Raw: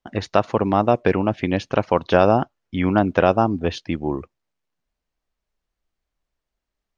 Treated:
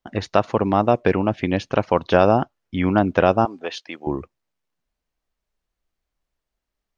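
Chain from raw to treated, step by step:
0:03.45–0:04.07: high-pass filter 580 Hz 12 dB per octave

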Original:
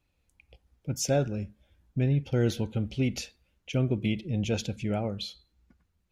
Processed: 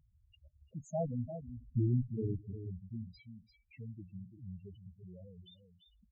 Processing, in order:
source passing by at 0:01.47, 49 m/s, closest 3.2 metres
in parallel at 0 dB: upward compression, threshold −48 dBFS
on the sum: single-tap delay 344 ms −9 dB
on a send at −22 dB: convolution reverb RT60 0.90 s, pre-delay 57 ms
on the sum: treble cut that deepens with the level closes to 1,100 Hz, closed at −34 dBFS
harmonic generator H 5 −31 dB, 6 −13 dB, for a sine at −21 dBFS
spectral peaks only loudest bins 4
level +3.5 dB

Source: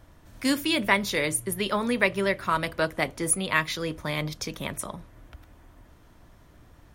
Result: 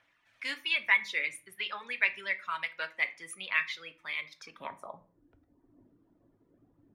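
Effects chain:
reverb reduction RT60 1.2 s
phase shifter 0.86 Hz, delay 2.5 ms, feedback 31%
band-pass filter sweep 2,300 Hz → 310 Hz, 0:04.29–0:05.22
on a send: convolution reverb RT60 0.40 s, pre-delay 4 ms, DRR 9 dB

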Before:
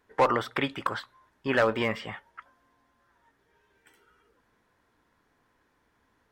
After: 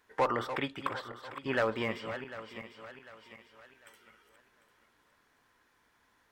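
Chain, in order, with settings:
feedback delay that plays each chunk backwards 374 ms, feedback 52%, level −10.5 dB
one half of a high-frequency compander encoder only
level −6 dB

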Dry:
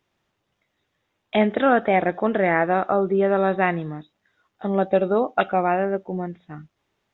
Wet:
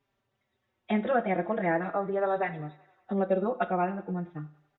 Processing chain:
high-shelf EQ 2,700 Hz −7.5 dB
in parallel at +2.5 dB: downward compressor, threshold −30 dBFS, peak gain reduction 15.5 dB
on the sum: phase-vocoder stretch with locked phases 0.67×
feedback echo with a high-pass in the loop 94 ms, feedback 68%, high-pass 300 Hz, level −22.5 dB
on a send at −11.5 dB: convolution reverb RT60 0.45 s, pre-delay 12 ms
on the sum: barber-pole flanger 4.6 ms −0.42 Hz
level −6.5 dB

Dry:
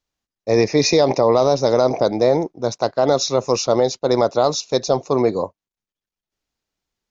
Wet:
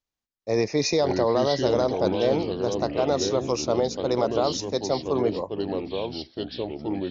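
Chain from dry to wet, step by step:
delay with pitch and tempo change per echo 420 ms, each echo −4 semitones, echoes 3, each echo −6 dB
0:04.57–0:05.42: multiband upward and downward expander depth 40%
level −7.5 dB

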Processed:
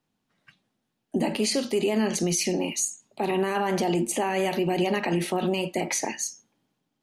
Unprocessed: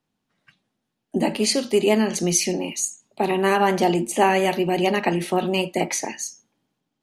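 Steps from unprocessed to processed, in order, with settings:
brickwall limiter −16 dBFS, peak gain reduction 11 dB

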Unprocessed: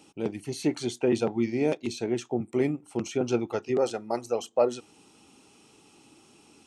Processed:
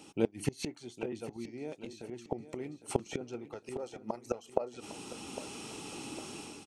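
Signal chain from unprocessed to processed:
automatic gain control gain up to 11 dB
gate with flip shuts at −17 dBFS, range −28 dB
repeating echo 806 ms, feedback 43%, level −13.5 dB
level +2 dB

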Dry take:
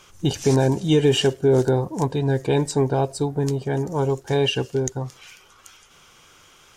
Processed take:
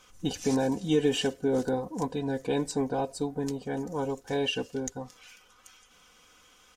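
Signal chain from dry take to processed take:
comb filter 4 ms, depth 67%
level −8.5 dB

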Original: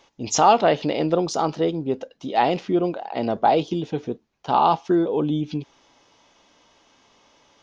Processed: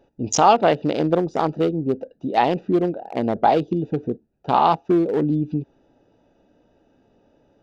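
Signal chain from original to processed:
adaptive Wiener filter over 41 samples
in parallel at 0 dB: downward compressor, threshold −27 dBFS, peak gain reduction 15.5 dB

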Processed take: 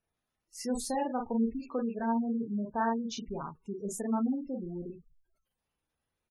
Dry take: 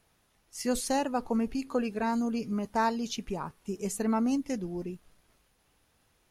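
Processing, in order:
noise reduction from a noise print of the clip's start 13 dB
ambience of single reflections 35 ms −5 dB, 48 ms −6.5 dB
gate on every frequency bin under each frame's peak −20 dB strong
level −4.5 dB

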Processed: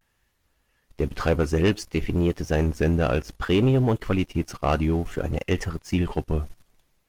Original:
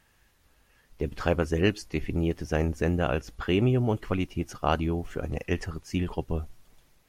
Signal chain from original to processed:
leveller curve on the samples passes 2
pitch vibrato 0.59 Hz 71 cents
level −2 dB

